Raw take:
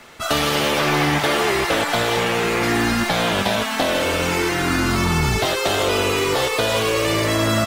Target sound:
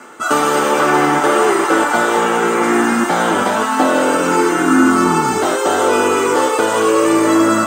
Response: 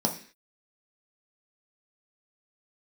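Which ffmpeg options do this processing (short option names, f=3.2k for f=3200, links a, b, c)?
-filter_complex "[0:a]areverse,acompressor=mode=upward:threshold=-28dB:ratio=2.5,areverse,lowshelf=f=260:g=-11[a];[1:a]atrim=start_sample=2205,asetrate=66150,aresample=44100[b];[a][b]afir=irnorm=-1:irlink=0,volume=-2dB"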